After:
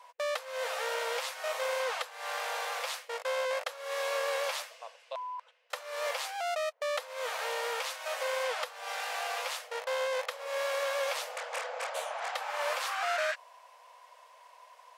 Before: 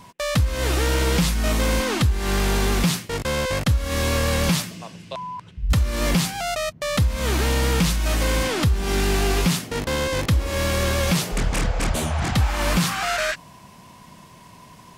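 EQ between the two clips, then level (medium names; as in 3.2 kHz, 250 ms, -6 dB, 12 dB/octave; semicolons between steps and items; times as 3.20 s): brick-wall FIR high-pass 460 Hz; treble shelf 3.4 kHz -10 dB; -5.5 dB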